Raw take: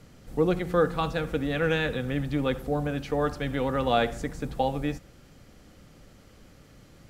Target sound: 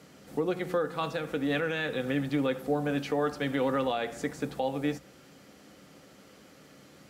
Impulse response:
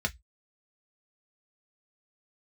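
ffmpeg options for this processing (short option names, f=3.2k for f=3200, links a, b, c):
-filter_complex "[0:a]highpass=210,alimiter=limit=-21.5dB:level=0:latency=1:release=260,asplit=2[a][b];[1:a]atrim=start_sample=2205,adelay=8[c];[b][c]afir=irnorm=-1:irlink=0,volume=-17dB[d];[a][d]amix=inputs=2:normalize=0,volume=2dB"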